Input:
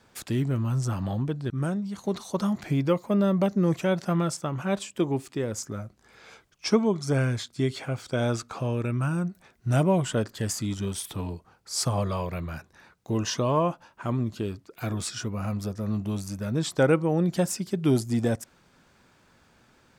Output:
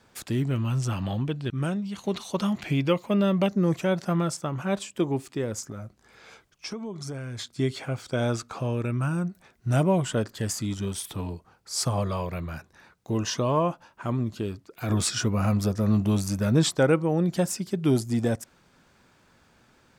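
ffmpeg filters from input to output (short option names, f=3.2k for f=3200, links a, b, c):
-filter_complex "[0:a]asettb=1/sr,asplit=3[a][b][c];[a]atrim=end=0.484[d];[b]atrim=start=0.48:end=3.49,asetpts=PTS-STARTPTS,afade=t=in:d=0.004:c=qsin,afade=t=out:st=3.006:d=0.004:c=qsin,equalizer=f=2.8k:w=1.8:g=10[e];[c]atrim=start=3.486[f];[d][e]acrossfade=d=0.004:c1=hsin:c2=qsin[g];[g][f]acrossfade=d=0.004:c1=qsin:c2=hsin,asettb=1/sr,asplit=3[h][i][j];[h]atrim=end=5.604[k];[i]atrim=start=5.6:end=7.39,asetpts=PTS-STARTPTS,afade=t=in:d=0.004:c=qsin,afade=t=out:st=1.786:d=0.004:c=qsin,acompressor=threshold=-32dB:ratio=6:attack=3.2:release=140:knee=1:detection=peak[l];[j]atrim=start=7.386[m];[k][l]acrossfade=d=0.004:c1=hsin:c2=qsin[n];[n][m]acrossfade=d=0.004:c1=qsin:c2=hsin,asplit=3[o][p][q];[o]afade=t=out:st=14.88:d=0.02[r];[p]acontrast=64,afade=t=in:st=14.88:d=0.02,afade=t=out:st=16.7:d=0.02[s];[q]afade=t=in:st=16.7:d=0.02[t];[r][s][t]amix=inputs=3:normalize=0"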